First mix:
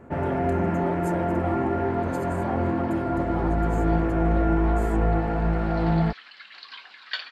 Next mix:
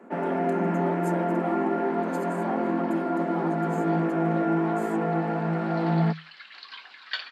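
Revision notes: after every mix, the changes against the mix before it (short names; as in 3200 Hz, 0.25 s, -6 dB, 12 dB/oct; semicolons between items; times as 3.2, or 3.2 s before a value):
master: add Chebyshev high-pass 160 Hz, order 10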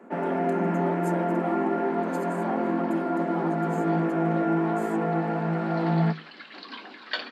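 second sound: remove HPF 1300 Hz 12 dB/oct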